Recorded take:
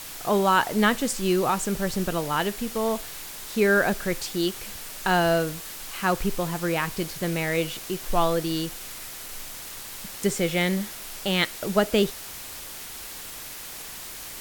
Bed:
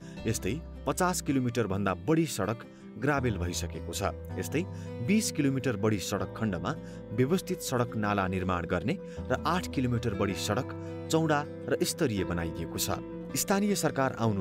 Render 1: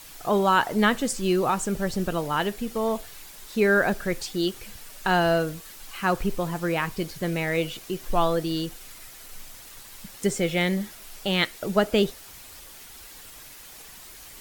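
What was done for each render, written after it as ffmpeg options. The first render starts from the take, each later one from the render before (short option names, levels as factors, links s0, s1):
-af "afftdn=nr=8:nf=-39"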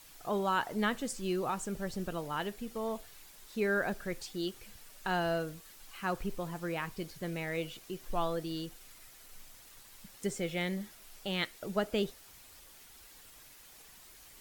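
-af "volume=0.299"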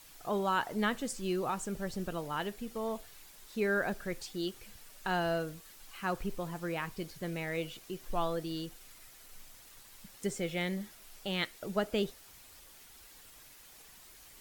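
-af anull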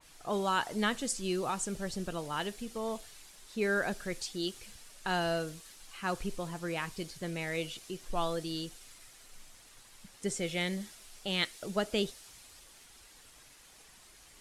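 -af "lowpass=f=11000:w=0.5412,lowpass=f=11000:w=1.3066,adynamicequalizer=threshold=0.00355:dfrequency=2700:dqfactor=0.7:tfrequency=2700:tqfactor=0.7:attack=5:release=100:ratio=0.375:range=3.5:mode=boostabove:tftype=highshelf"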